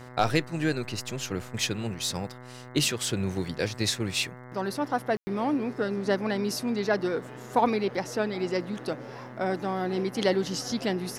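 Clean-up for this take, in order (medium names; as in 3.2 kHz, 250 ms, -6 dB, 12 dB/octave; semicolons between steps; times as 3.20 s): de-click; de-hum 124.9 Hz, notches 17; room tone fill 5.17–5.27 s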